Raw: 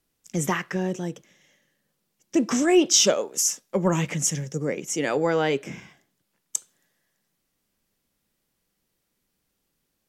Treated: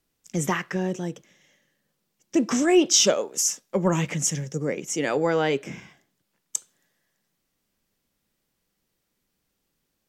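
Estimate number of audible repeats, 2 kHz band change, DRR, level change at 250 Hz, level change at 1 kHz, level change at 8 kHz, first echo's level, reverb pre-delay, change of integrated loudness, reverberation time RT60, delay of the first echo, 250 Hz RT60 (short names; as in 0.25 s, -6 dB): none, 0.0 dB, none, 0.0 dB, 0.0 dB, -0.5 dB, none, none, 0.0 dB, none, none, none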